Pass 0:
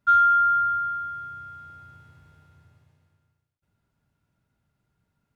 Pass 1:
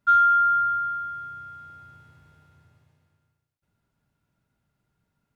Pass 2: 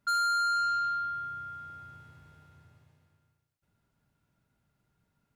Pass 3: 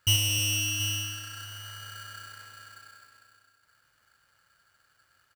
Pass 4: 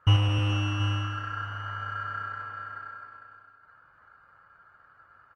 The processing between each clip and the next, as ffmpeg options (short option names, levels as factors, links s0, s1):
-af "equalizer=f=82:t=o:w=0.98:g=-3.5"
-af "asoftclip=type=tanh:threshold=0.0473"
-filter_complex "[0:a]asplit=2[s0][s1];[s1]aecho=0:1:59|92|218|315|729:0.188|0.398|0.299|0.398|0.188[s2];[s0][s2]amix=inputs=2:normalize=0,aeval=exprs='val(0)*sgn(sin(2*PI*1500*n/s))':c=same,volume=2.11"
-af "lowpass=f=1200:t=q:w=2.5,volume=2.51" -ar 48000 -c:a libopus -b:a 20k